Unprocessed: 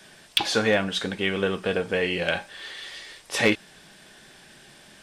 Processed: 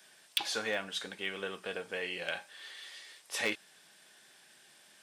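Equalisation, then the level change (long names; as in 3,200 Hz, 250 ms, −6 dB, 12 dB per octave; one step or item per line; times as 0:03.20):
high-pass filter 62 Hz
spectral tilt +4.5 dB per octave
high-shelf EQ 2,100 Hz −11.5 dB
−9.0 dB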